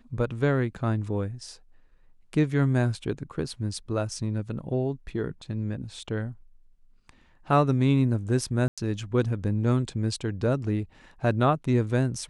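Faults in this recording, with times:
8.68–8.78 gap 96 ms

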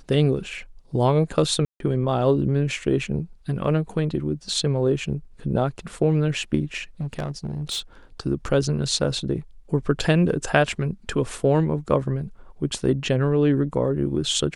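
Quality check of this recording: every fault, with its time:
1.65–1.8 gap 0.152 s
7.01–7.8 clipped -23 dBFS

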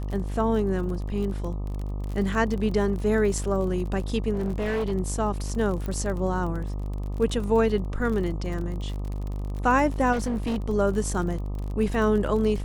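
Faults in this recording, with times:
buzz 50 Hz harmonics 25 -30 dBFS
crackle 42/s -32 dBFS
4.33–4.93 clipped -23 dBFS
5.86 pop -20 dBFS
10.12–10.62 clipped -23 dBFS

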